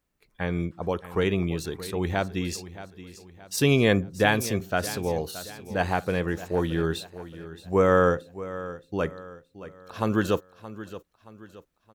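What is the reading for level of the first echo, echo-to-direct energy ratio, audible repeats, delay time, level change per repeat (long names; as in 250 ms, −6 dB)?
−15.0 dB, −14.0 dB, 3, 623 ms, −7.5 dB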